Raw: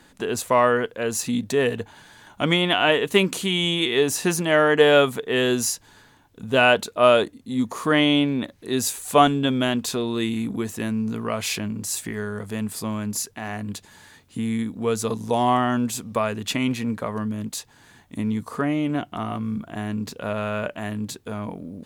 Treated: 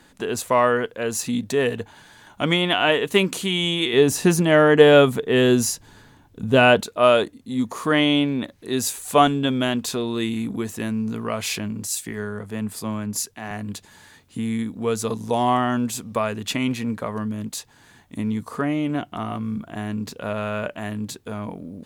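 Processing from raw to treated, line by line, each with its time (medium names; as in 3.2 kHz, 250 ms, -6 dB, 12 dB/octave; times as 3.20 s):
3.93–6.81 s: bass shelf 410 Hz +8.5 dB
11.87–13.51 s: three bands expanded up and down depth 40%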